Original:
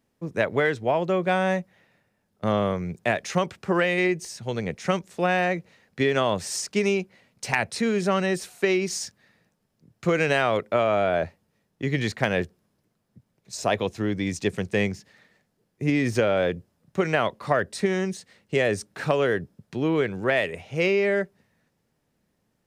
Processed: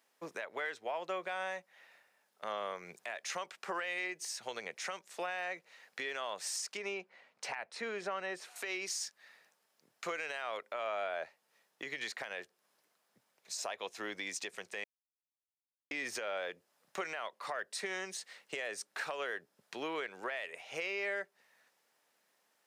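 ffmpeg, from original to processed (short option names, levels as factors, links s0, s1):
-filter_complex "[0:a]asettb=1/sr,asplit=3[s0][s1][s2];[s0]atrim=end=6.774[s3];[s1]atrim=start=6.77:end=8.56,asetpts=PTS-STARTPTS,afade=t=in:d=0.004:c=qsin,afade=t=out:st=1.786:d=0.004:c=qsin,lowpass=f=1500:p=1[s4];[s2]atrim=start=8.556[s5];[s3][s4]acrossfade=d=0.004:c1=hsin:c2=qsin[s6];[s6][s5]acrossfade=d=0.004:c1=qsin:c2=hsin,asplit=3[s7][s8][s9];[s7]atrim=end=14.84,asetpts=PTS-STARTPTS,afade=t=out:st=14.836:d=0.004:c=hsin[s10];[s8]atrim=start=14.84:end=15.91,asetpts=PTS-STARTPTS,volume=0[s11];[s9]atrim=start=15.91,asetpts=PTS-STARTPTS,afade=t=in:d=0.004:c=hsin[s12];[s10][s11][s12]concat=n=3:v=0:a=1,highpass=780,acompressor=threshold=0.00631:ratio=2.5,alimiter=level_in=2.37:limit=0.0631:level=0:latency=1:release=106,volume=0.422,volume=1.58"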